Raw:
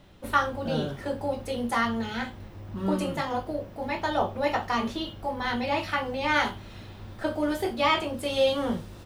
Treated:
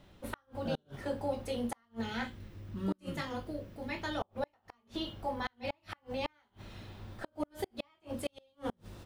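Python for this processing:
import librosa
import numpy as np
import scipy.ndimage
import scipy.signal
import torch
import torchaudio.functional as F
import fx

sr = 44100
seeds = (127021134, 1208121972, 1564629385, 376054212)

y = fx.peak_eq(x, sr, hz=790.0, db=-9.5, octaves=1.1, at=(2.27, 4.22))
y = fx.gate_flip(y, sr, shuts_db=-18.0, range_db=-40)
y = y * 10.0 ** (-5.0 / 20.0)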